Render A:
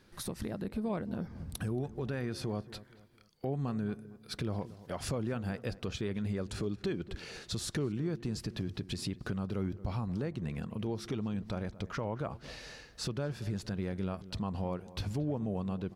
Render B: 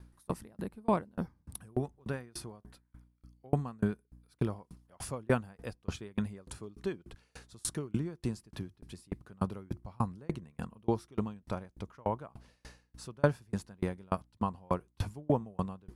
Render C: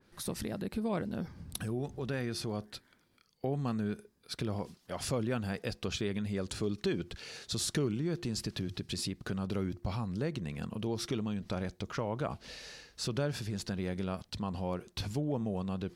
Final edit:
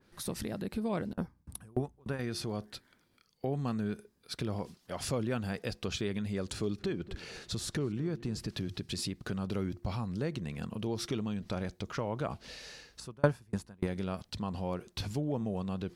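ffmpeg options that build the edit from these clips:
-filter_complex "[1:a]asplit=2[s0][s1];[2:a]asplit=4[s2][s3][s4][s5];[s2]atrim=end=1.132[s6];[s0]atrim=start=1.128:end=2.192[s7];[s3]atrim=start=2.188:end=6.792[s8];[0:a]atrim=start=6.788:end=8.482[s9];[s4]atrim=start=8.478:end=13.002[s10];[s1]atrim=start=12.998:end=13.872[s11];[s5]atrim=start=13.868[s12];[s6][s7]acrossfade=d=0.004:c1=hsin:c2=hsin[s13];[s13][s8]acrossfade=d=0.004:c1=hsin:c2=hsin[s14];[s14][s9]acrossfade=d=0.004:c1=hsin:c2=hsin[s15];[s15][s10]acrossfade=d=0.004:c1=hsin:c2=hsin[s16];[s16][s11]acrossfade=d=0.004:c1=hsin:c2=hsin[s17];[s17][s12]acrossfade=d=0.004:c1=hsin:c2=hsin"

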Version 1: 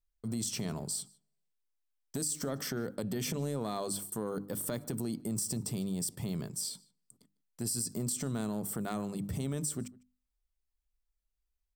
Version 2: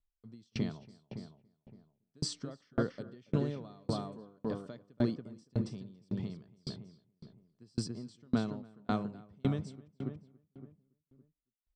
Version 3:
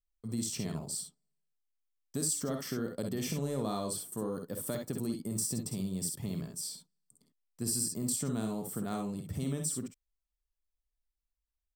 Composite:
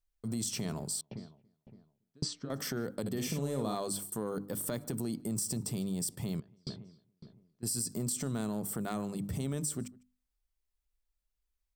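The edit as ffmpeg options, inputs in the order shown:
-filter_complex "[1:a]asplit=2[s0][s1];[0:a]asplit=4[s2][s3][s4][s5];[s2]atrim=end=1.012[s6];[s0]atrim=start=1.008:end=2.502[s7];[s3]atrim=start=2.498:end=3.062[s8];[2:a]atrim=start=3.058:end=3.752[s9];[s4]atrim=start=3.748:end=6.402[s10];[s1]atrim=start=6.398:end=7.632[s11];[s5]atrim=start=7.628[s12];[s6][s7]acrossfade=d=0.004:c1=hsin:c2=hsin[s13];[s13][s8]acrossfade=d=0.004:c1=hsin:c2=hsin[s14];[s14][s9]acrossfade=d=0.004:c1=hsin:c2=hsin[s15];[s15][s10]acrossfade=d=0.004:c1=hsin:c2=hsin[s16];[s16][s11]acrossfade=d=0.004:c1=hsin:c2=hsin[s17];[s17][s12]acrossfade=d=0.004:c1=hsin:c2=hsin"

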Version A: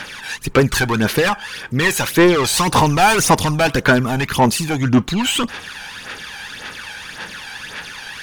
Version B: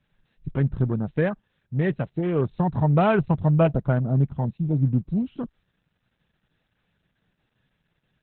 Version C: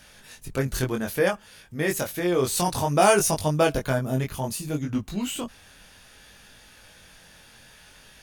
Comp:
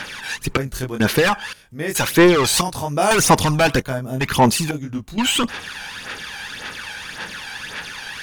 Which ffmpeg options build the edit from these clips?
-filter_complex "[2:a]asplit=5[s0][s1][s2][s3][s4];[0:a]asplit=6[s5][s6][s7][s8][s9][s10];[s5]atrim=end=0.572[s11];[s0]atrim=start=0.568:end=1.002[s12];[s6]atrim=start=0.998:end=1.532[s13];[s1]atrim=start=1.528:end=1.952[s14];[s7]atrim=start=1.948:end=2.612[s15];[s2]atrim=start=2.608:end=3.112[s16];[s8]atrim=start=3.108:end=3.812[s17];[s3]atrim=start=3.808:end=4.212[s18];[s9]atrim=start=4.208:end=4.712[s19];[s4]atrim=start=4.708:end=5.182[s20];[s10]atrim=start=5.178[s21];[s11][s12]acrossfade=d=0.004:c1=hsin:c2=hsin[s22];[s22][s13]acrossfade=d=0.004:c1=hsin:c2=hsin[s23];[s23][s14]acrossfade=d=0.004:c1=hsin:c2=hsin[s24];[s24][s15]acrossfade=d=0.004:c1=hsin:c2=hsin[s25];[s25][s16]acrossfade=d=0.004:c1=hsin:c2=hsin[s26];[s26][s17]acrossfade=d=0.004:c1=hsin:c2=hsin[s27];[s27][s18]acrossfade=d=0.004:c1=hsin:c2=hsin[s28];[s28][s19]acrossfade=d=0.004:c1=hsin:c2=hsin[s29];[s29][s20]acrossfade=d=0.004:c1=hsin:c2=hsin[s30];[s30][s21]acrossfade=d=0.004:c1=hsin:c2=hsin"

